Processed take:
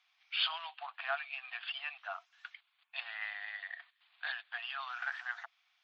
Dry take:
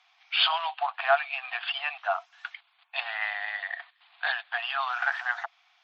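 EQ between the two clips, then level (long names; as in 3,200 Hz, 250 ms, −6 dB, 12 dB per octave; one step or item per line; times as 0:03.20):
parametric band 750 Hz −9 dB 1.1 octaves
−8.5 dB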